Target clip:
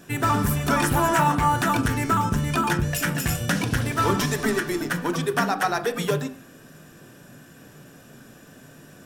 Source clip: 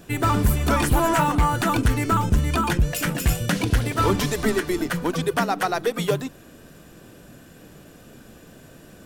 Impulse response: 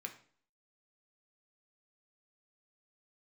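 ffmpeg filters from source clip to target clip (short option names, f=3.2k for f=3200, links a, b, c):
-filter_complex "[0:a]asplit=2[a][b];[1:a]atrim=start_sample=2205,atrim=end_sample=6174,asetrate=31311,aresample=44100[c];[b][c]afir=irnorm=-1:irlink=0,volume=2.5dB[d];[a][d]amix=inputs=2:normalize=0,volume=-6dB"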